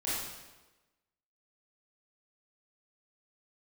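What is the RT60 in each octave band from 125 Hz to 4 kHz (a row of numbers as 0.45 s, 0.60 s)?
1.1 s, 1.1 s, 1.2 s, 1.1 s, 1.0 s, 0.95 s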